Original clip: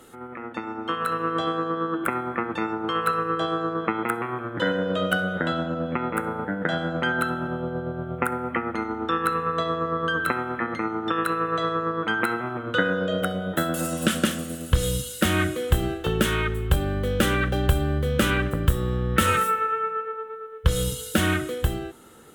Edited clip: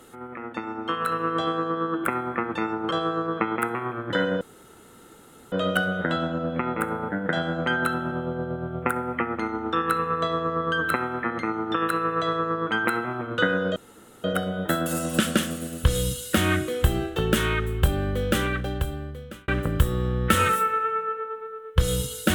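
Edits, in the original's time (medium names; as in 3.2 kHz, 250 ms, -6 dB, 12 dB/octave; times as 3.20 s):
2.91–3.38 s: delete
4.88 s: insert room tone 1.11 s
13.12 s: insert room tone 0.48 s
16.96–18.36 s: fade out linear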